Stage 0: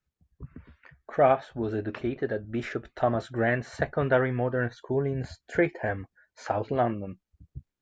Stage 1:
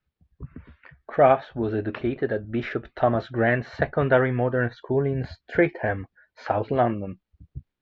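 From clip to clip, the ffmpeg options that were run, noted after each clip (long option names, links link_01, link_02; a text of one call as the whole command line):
ffmpeg -i in.wav -af "lowpass=frequency=4300:width=0.5412,lowpass=frequency=4300:width=1.3066,volume=4dB" out.wav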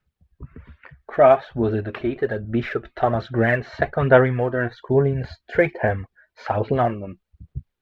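ffmpeg -i in.wav -af "equalizer=frequency=300:width=8:gain=-7.5,aphaser=in_gain=1:out_gain=1:delay=3.2:decay=0.42:speed=1.2:type=sinusoidal,volume=1.5dB" out.wav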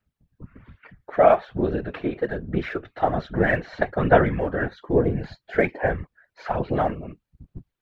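ffmpeg -i in.wav -af "afftfilt=real='hypot(re,im)*cos(2*PI*random(0))':imag='hypot(re,im)*sin(2*PI*random(1))':win_size=512:overlap=0.75,volume=3.5dB" out.wav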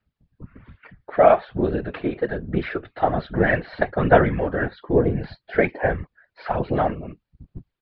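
ffmpeg -i in.wav -af "aresample=11025,aresample=44100,volume=1.5dB" out.wav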